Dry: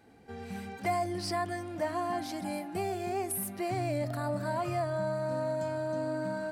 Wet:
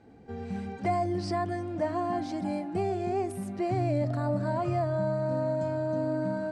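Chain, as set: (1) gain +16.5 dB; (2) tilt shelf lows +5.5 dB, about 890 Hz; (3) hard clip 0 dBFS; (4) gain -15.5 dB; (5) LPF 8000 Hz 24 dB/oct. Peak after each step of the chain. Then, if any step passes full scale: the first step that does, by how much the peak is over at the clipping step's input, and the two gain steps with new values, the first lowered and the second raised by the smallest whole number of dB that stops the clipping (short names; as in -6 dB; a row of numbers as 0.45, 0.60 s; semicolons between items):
-3.5, -2.0, -2.0, -17.5, -17.5 dBFS; no overload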